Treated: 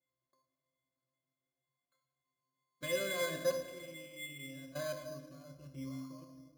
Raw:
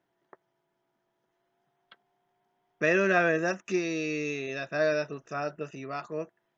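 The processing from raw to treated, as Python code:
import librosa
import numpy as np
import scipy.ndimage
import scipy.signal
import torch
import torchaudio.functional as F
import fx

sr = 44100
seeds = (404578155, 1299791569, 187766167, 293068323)

y = fx.peak_eq(x, sr, hz=1600.0, db=14.5, octaves=1.6)
y = fx.level_steps(y, sr, step_db=20)
y = fx.peak_eq(y, sr, hz=4100.0, db=11.5, octaves=0.52)
y = fx.octave_resonator(y, sr, note='C', decay_s=0.42)
y = fx.room_shoebox(y, sr, seeds[0], volume_m3=1400.0, walls='mixed', distance_m=1.1)
y = np.repeat(y[::8], 8)[:len(y)]
y = fx.notch(y, sr, hz=1300.0, q=5.1)
y = y * 10.0 ** (9.0 / 20.0)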